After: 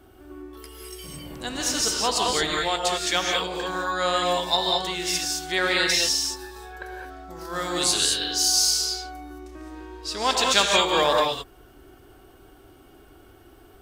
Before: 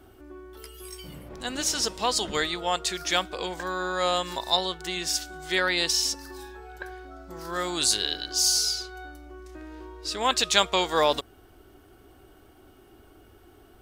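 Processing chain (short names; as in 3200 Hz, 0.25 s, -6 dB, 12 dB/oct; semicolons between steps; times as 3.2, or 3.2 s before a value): non-linear reverb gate 0.24 s rising, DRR -1 dB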